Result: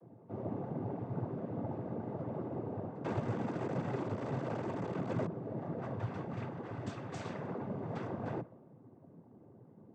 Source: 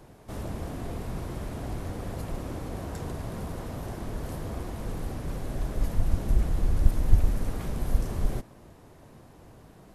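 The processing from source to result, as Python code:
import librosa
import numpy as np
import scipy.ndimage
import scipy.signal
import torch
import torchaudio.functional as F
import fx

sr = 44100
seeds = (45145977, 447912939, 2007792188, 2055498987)

y = fx.low_shelf(x, sr, hz=420.0, db=-9.5)
y = fx.env_lowpass(y, sr, base_hz=340.0, full_db=-19.0)
y = fx.leveller(y, sr, passes=5, at=(3.04, 5.26))
y = fx.rider(y, sr, range_db=4, speed_s=0.5)
y = fx.noise_vocoder(y, sr, seeds[0], bands=16)
y = y * librosa.db_to_amplitude(2.5)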